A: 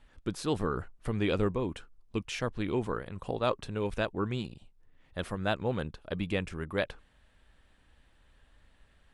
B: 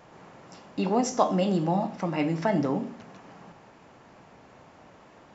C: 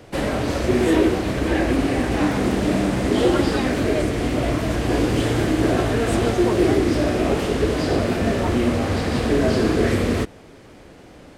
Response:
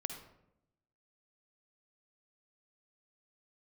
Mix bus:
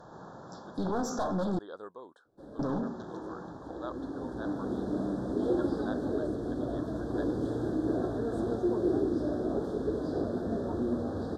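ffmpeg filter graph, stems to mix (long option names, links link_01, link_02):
-filter_complex "[0:a]acrossover=split=3700[link_01][link_02];[link_02]acompressor=threshold=-55dB:ratio=4:attack=1:release=60[link_03];[link_01][link_03]amix=inputs=2:normalize=0,highpass=560,adelay=400,volume=-9dB[link_04];[1:a]aeval=exprs='clip(val(0),-1,0.0299)':channel_layout=same,volume=2.5dB,asplit=3[link_05][link_06][link_07];[link_05]atrim=end=1.59,asetpts=PTS-STARTPTS,afade=type=out:start_time=1.586:duration=0.004:curve=hsin[link_08];[link_06]atrim=start=1.59:end=2.59,asetpts=PTS-STARTPTS,volume=0[link_09];[link_07]atrim=start=2.59,asetpts=PTS-STARTPTS,afade=type=in:duration=0.004:curve=hsin[link_10];[link_08][link_09][link_10]concat=n=3:v=0:a=1,asplit=2[link_11][link_12];[2:a]equalizer=frequency=330:width=0.51:gain=9.5,adelay=2250,volume=-19.5dB[link_13];[link_12]apad=whole_len=601071[link_14];[link_13][link_14]sidechaincompress=threshold=-43dB:ratio=6:attack=31:release=1460[link_15];[link_04][link_11]amix=inputs=2:normalize=0,volume=20.5dB,asoftclip=hard,volume=-20.5dB,alimiter=level_in=1dB:limit=-24dB:level=0:latency=1:release=17,volume=-1dB,volume=0dB[link_16];[link_15][link_16]amix=inputs=2:normalize=0,asuperstop=centerf=2400:order=12:qfactor=1.4,aemphasis=mode=reproduction:type=cd"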